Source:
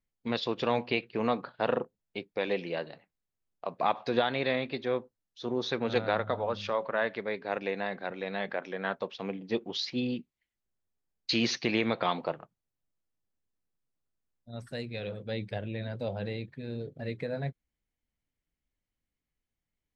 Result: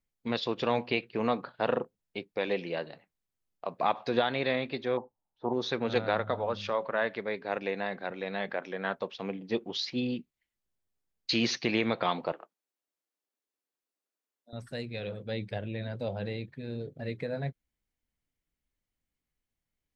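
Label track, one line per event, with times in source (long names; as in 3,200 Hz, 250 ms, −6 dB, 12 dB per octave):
4.970000	5.530000	low-pass with resonance 860 Hz, resonance Q 5.8
12.320000	14.530000	high-pass filter 300 Hz 24 dB per octave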